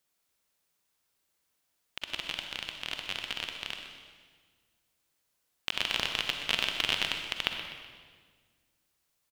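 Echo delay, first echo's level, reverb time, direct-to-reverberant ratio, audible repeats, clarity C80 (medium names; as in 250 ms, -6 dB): 125 ms, -12.5 dB, 1.6 s, 3.5 dB, 2, 5.0 dB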